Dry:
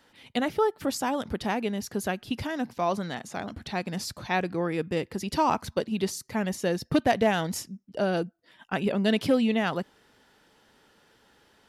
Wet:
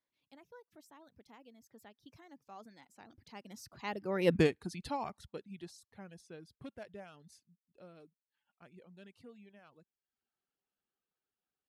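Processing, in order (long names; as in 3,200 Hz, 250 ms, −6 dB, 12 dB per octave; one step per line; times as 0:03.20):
source passing by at 0:04.35, 37 m/s, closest 1.9 metres
reverb reduction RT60 0.6 s
level +7.5 dB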